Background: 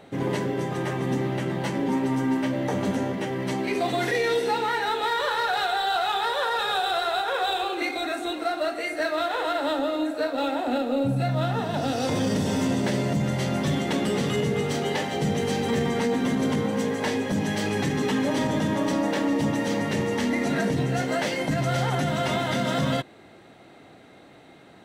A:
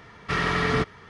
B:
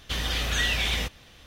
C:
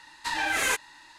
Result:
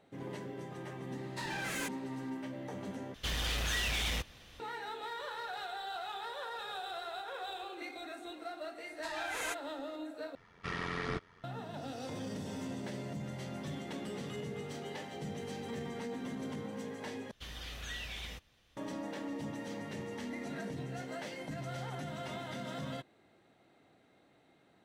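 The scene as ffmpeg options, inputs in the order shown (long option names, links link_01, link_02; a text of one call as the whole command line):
ffmpeg -i bed.wav -i cue0.wav -i cue1.wav -i cue2.wav -filter_complex "[3:a]asplit=2[link_01][link_02];[2:a]asplit=2[link_03][link_04];[0:a]volume=-16.5dB[link_05];[link_01]asoftclip=type=hard:threshold=-26dB[link_06];[link_03]asoftclip=type=hard:threshold=-27dB[link_07];[1:a]tremolo=f=88:d=0.71[link_08];[link_05]asplit=4[link_09][link_10][link_11][link_12];[link_09]atrim=end=3.144[link_13];[link_07]atrim=end=1.46,asetpts=PTS-STARTPTS,volume=-4dB[link_14];[link_10]atrim=start=4.596:end=10.354[link_15];[link_08]atrim=end=1.09,asetpts=PTS-STARTPTS,volume=-10.5dB[link_16];[link_11]atrim=start=11.436:end=17.314[link_17];[link_04]atrim=end=1.46,asetpts=PTS-STARTPTS,volume=-17dB[link_18];[link_12]atrim=start=18.766[link_19];[link_06]atrim=end=1.18,asetpts=PTS-STARTPTS,volume=-10dB,afade=type=in:duration=0.004:curve=hsin,afade=type=out:start_time=1.176:duration=0.004:curve=hsin,adelay=1120[link_20];[link_02]atrim=end=1.18,asetpts=PTS-STARTPTS,volume=-13dB,afade=type=in:duration=0.004:curve=hsin,afade=type=out:start_time=1.176:duration=0.004:curve=hsin,adelay=8780[link_21];[link_13][link_14]acrossfade=duration=0.004:curve1=hsin:curve2=hsin[link_22];[link_22][link_15]acrossfade=duration=0.004:curve1=hsin:curve2=hsin[link_23];[link_23][link_16]acrossfade=duration=0.004:curve1=hsin:curve2=hsin[link_24];[link_24][link_17]acrossfade=duration=0.004:curve1=hsin:curve2=hsin[link_25];[link_25][link_18]acrossfade=duration=0.004:curve1=hsin:curve2=hsin[link_26];[link_26][link_19]acrossfade=duration=0.004:curve1=hsin:curve2=hsin[link_27];[link_27][link_20][link_21]amix=inputs=3:normalize=0" out.wav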